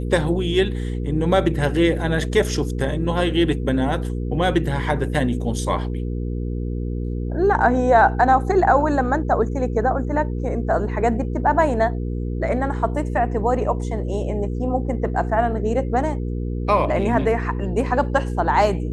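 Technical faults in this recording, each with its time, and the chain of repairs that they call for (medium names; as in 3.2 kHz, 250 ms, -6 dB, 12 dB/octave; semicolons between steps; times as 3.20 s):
hum 60 Hz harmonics 8 -25 dBFS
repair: de-hum 60 Hz, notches 8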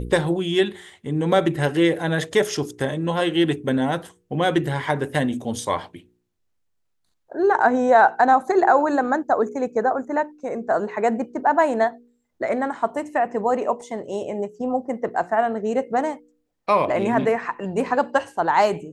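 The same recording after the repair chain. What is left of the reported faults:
nothing left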